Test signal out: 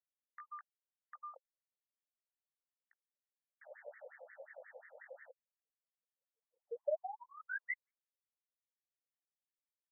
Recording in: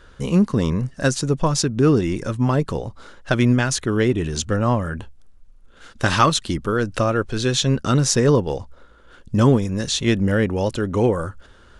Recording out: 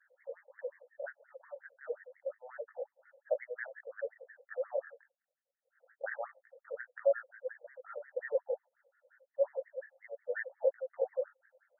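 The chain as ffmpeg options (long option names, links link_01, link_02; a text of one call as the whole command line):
ffmpeg -i in.wav -filter_complex "[0:a]asplit=3[link_01][link_02][link_03];[link_01]bandpass=frequency=530:width_type=q:width=8,volume=0dB[link_04];[link_02]bandpass=frequency=1840:width_type=q:width=8,volume=-6dB[link_05];[link_03]bandpass=frequency=2480:width_type=q:width=8,volume=-9dB[link_06];[link_04][link_05][link_06]amix=inputs=3:normalize=0,flanger=delay=16:depth=6.9:speed=0.29,afftfilt=real='re*between(b*sr/1024,630*pow(1600/630,0.5+0.5*sin(2*PI*5.6*pts/sr))/1.41,630*pow(1600/630,0.5+0.5*sin(2*PI*5.6*pts/sr))*1.41)':imag='im*between(b*sr/1024,630*pow(1600/630,0.5+0.5*sin(2*PI*5.6*pts/sr))/1.41,630*pow(1600/630,0.5+0.5*sin(2*PI*5.6*pts/sr))*1.41)':win_size=1024:overlap=0.75,volume=3dB" out.wav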